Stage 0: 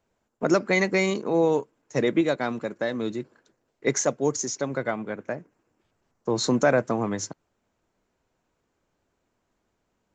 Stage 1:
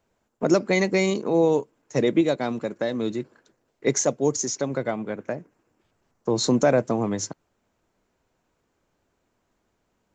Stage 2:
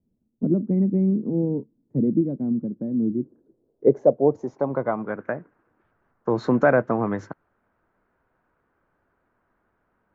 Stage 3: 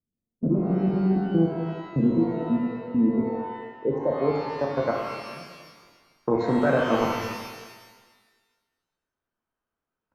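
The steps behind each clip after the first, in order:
dynamic bell 1.5 kHz, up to -7 dB, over -40 dBFS, Q 1.1; trim +2.5 dB
low-pass sweep 230 Hz -> 1.5 kHz, 2.99–5.23 s
level held to a coarse grid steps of 23 dB; pitch-shifted reverb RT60 1.4 s, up +12 st, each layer -8 dB, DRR -1 dB

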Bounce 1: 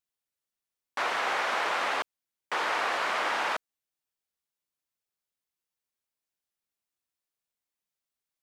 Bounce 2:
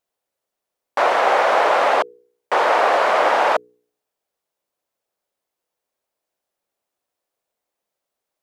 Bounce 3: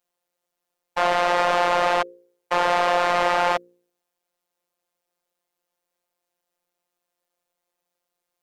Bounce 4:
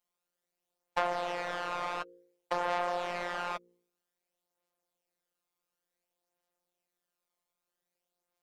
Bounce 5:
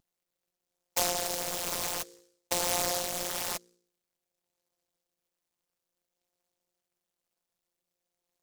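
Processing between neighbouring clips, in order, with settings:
peaking EQ 570 Hz +14.5 dB 1.8 oct; de-hum 60.68 Hz, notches 8; trim +4.5 dB
saturation -17.5 dBFS, distortion -10 dB; robot voice 176 Hz; trim +3 dB
compression 12:1, threshold -22 dBFS, peak gain reduction 9 dB; flange 0.27 Hz, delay 4.7 ms, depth 1.9 ms, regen +27%; trim -2 dB
vibrato 0.35 Hz 7.4 cents; delay time shaken by noise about 5.9 kHz, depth 0.22 ms; trim +2 dB

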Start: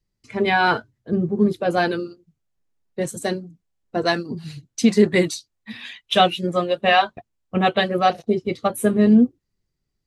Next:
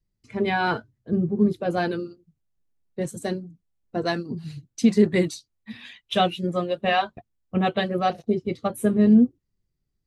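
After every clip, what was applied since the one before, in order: bass shelf 350 Hz +7.5 dB; trim -7 dB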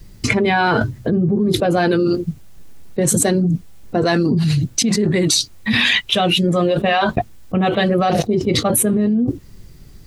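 level flattener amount 100%; trim -3.5 dB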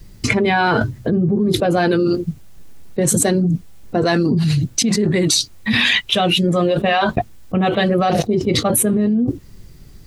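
no audible change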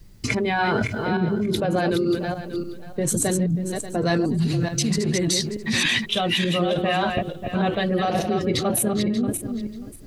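backward echo that repeats 293 ms, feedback 40%, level -5 dB; trim -7 dB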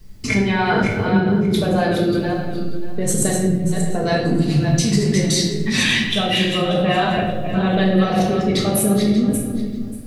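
simulated room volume 370 m³, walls mixed, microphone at 1.5 m

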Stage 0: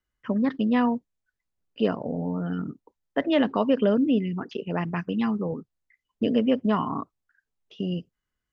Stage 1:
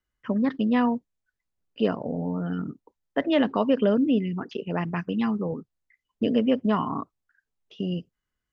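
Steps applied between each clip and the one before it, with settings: no audible change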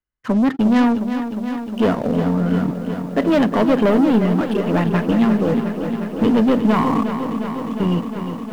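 treble shelf 4.3 kHz -11.5 dB; waveshaping leveller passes 3; bit-crushed delay 357 ms, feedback 80%, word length 8-bit, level -9 dB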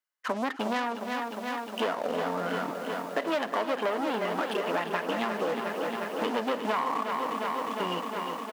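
high-pass 650 Hz 12 dB/octave; compression 5:1, threshold -28 dBFS, peak gain reduction 10.5 dB; delay 309 ms -16.5 dB; trim +2 dB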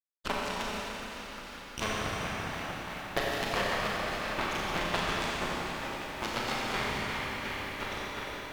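harmonic-percussive split harmonic -15 dB; Chebyshev shaper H 3 -19 dB, 5 -21 dB, 7 -16 dB, 8 -17 dB, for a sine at -14 dBFS; Schroeder reverb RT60 3.6 s, combs from 29 ms, DRR -5 dB

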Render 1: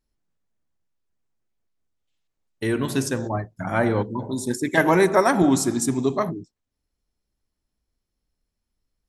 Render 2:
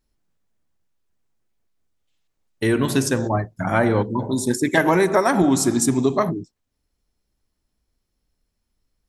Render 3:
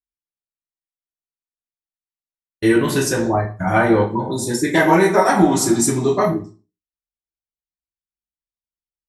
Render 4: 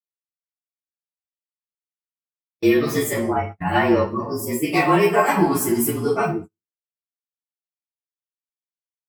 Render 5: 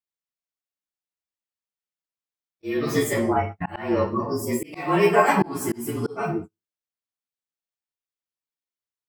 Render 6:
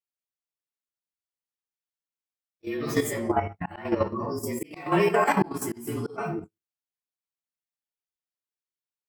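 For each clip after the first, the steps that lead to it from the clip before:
compression, threshold -18 dBFS, peak gain reduction 7 dB; trim +5 dB
expander -29 dBFS; reverberation RT60 0.35 s, pre-delay 3 ms, DRR -4.5 dB; trim -2.5 dB
frequency axis rescaled in octaves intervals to 111%; high-pass 120 Hz 6 dB/octave; gate -30 dBFS, range -35 dB
peaking EQ 13 kHz -6.5 dB 0.95 oct; slow attack 331 ms
level held to a coarse grid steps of 10 dB

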